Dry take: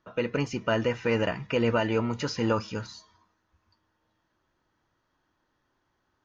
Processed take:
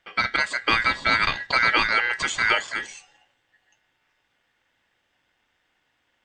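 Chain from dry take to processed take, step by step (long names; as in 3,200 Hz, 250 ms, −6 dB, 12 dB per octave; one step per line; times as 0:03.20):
dynamic equaliser 3,000 Hz, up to +5 dB, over −44 dBFS, Q 1.2
ring modulation 1,800 Hz
level +7 dB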